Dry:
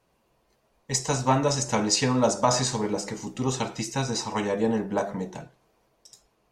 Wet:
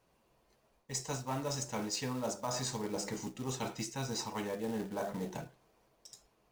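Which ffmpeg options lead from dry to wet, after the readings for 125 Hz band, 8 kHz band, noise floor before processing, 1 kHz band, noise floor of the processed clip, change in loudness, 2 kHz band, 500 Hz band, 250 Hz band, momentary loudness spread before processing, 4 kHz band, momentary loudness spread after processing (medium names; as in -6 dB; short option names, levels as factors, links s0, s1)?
-12.0 dB, -11.0 dB, -70 dBFS, -13.5 dB, -73 dBFS, -12.0 dB, -11.5 dB, -12.5 dB, -12.0 dB, 9 LU, -11.5 dB, 10 LU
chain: -af "areverse,acompressor=threshold=0.0251:ratio=5,areverse,acrusher=bits=4:mode=log:mix=0:aa=0.000001,volume=0.708"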